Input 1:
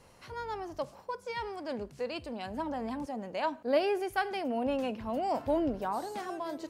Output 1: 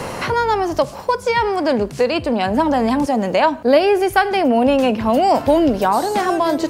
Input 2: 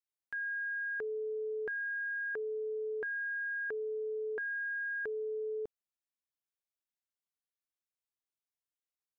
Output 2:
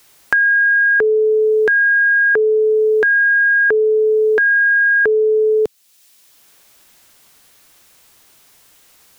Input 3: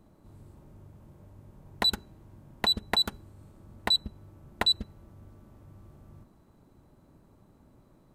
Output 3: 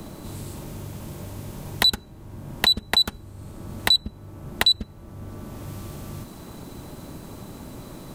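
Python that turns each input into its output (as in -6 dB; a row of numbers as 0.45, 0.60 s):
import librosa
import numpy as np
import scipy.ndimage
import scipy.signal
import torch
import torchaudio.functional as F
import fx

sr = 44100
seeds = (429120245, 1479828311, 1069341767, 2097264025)

y = fx.band_squash(x, sr, depth_pct=70)
y = y * 10.0 ** (-1.5 / 20.0) / np.max(np.abs(y))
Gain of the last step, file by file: +17.0, +23.5, +8.5 dB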